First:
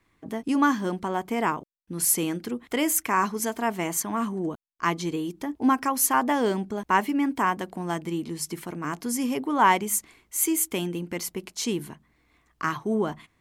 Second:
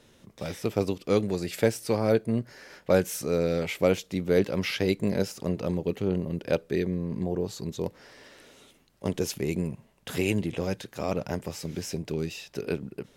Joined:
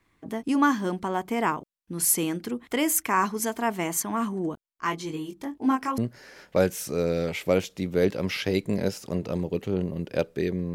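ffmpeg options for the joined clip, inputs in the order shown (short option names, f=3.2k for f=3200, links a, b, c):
-filter_complex "[0:a]asplit=3[a][b][c];[a]afade=t=out:st=4.57:d=0.02[d];[b]flanger=delay=19.5:depth=3.4:speed=0.6,afade=t=in:st=4.57:d=0.02,afade=t=out:st=5.98:d=0.02[e];[c]afade=t=in:st=5.98:d=0.02[f];[d][e][f]amix=inputs=3:normalize=0,apad=whole_dur=10.74,atrim=end=10.74,atrim=end=5.982[g];[1:a]atrim=start=2.318:end=7.08[h];[g][h]acrossfade=d=0.004:c1=hsin:c2=hsin"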